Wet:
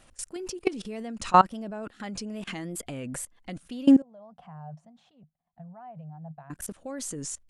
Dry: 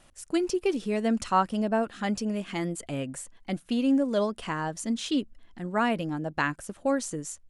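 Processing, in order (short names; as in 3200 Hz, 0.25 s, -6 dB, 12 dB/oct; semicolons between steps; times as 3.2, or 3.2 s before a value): level quantiser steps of 22 dB; 4.02–6.5 double band-pass 340 Hz, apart 2.2 oct; wow and flutter 82 cents; gain +8.5 dB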